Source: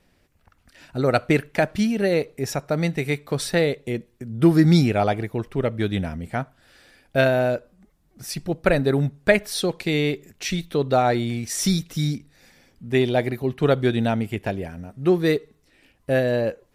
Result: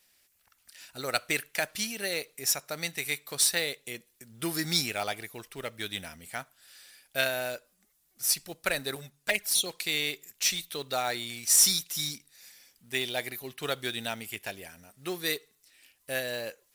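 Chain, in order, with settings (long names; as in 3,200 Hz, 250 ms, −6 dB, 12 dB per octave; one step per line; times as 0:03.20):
first-order pre-emphasis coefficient 0.97
floating-point word with a short mantissa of 2 bits
0:08.95–0:09.66: flanger swept by the level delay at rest 8.2 ms, full sweep at −27.5 dBFS
level +7.5 dB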